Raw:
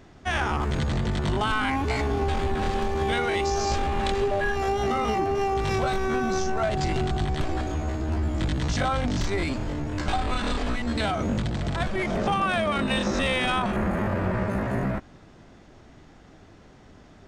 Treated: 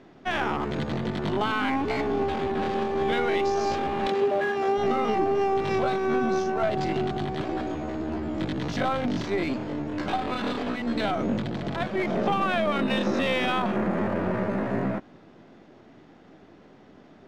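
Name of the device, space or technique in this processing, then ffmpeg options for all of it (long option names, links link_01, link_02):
crystal radio: -filter_complex "[0:a]highpass=210,lowpass=3300,aeval=exprs='if(lt(val(0),0),0.708*val(0),val(0))':channel_layout=same,asettb=1/sr,asplit=3[link_01][link_02][link_03];[link_01]atrim=end=4.074[link_04];[link_02]atrim=start=4.07:end=4.78,asetpts=PTS-STARTPTS,afade=type=in:duration=0.004:curve=qsin,afade=type=out:start_time=0.706:duration=0.004:curve=qsin,highpass=140[link_05];[link_03]atrim=start=4.776[link_06];[link_04][link_05]acrossfade=duration=0.004:curve1=hsin:curve2=qsin[link_07];[link_07][link_06]acrossfade=duration=0.004:curve1=qsin:curve2=hsin,equalizer=frequency=1600:width_type=o:width=2.9:gain=-6,volume=5.5dB"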